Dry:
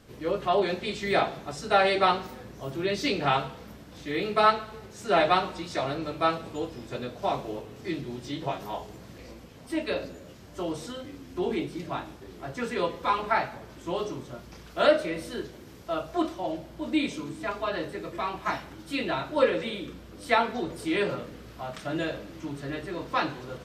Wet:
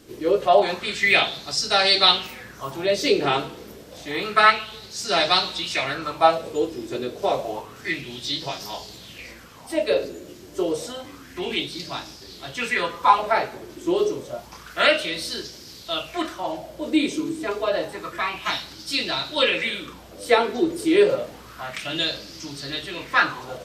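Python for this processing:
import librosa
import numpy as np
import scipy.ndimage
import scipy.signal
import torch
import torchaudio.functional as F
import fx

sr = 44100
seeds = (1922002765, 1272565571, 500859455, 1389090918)

y = fx.high_shelf(x, sr, hz=2500.0, db=11.5)
y = fx.bell_lfo(y, sr, hz=0.29, low_hz=340.0, high_hz=5100.0, db=15)
y = y * 10.0 ** (-1.5 / 20.0)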